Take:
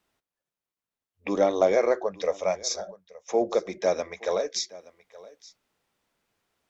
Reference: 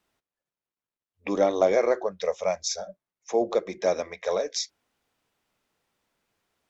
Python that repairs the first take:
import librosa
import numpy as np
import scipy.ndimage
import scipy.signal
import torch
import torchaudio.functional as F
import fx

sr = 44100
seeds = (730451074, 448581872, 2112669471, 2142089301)

y = fx.fix_echo_inverse(x, sr, delay_ms=873, level_db=-20.5)